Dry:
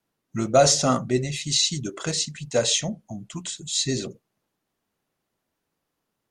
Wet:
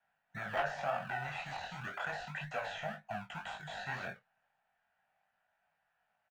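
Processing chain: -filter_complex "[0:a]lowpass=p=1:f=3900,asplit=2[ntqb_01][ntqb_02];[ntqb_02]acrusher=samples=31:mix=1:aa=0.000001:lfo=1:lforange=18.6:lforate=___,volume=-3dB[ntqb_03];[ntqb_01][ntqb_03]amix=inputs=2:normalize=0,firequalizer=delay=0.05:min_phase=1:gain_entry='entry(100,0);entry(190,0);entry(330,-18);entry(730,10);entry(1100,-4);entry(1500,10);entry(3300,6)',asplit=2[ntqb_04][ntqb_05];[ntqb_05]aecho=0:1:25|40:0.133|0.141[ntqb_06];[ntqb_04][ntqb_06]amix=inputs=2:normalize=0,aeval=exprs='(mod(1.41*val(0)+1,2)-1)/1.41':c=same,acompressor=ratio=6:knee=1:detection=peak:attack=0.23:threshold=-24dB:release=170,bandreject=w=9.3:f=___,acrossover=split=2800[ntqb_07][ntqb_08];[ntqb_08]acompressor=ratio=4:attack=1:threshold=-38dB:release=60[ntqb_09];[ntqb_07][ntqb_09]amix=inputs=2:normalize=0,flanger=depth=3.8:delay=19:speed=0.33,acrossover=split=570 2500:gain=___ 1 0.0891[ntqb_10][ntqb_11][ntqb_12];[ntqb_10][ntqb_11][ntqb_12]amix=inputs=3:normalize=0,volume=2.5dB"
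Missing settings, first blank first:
1.9, 2100, 0.158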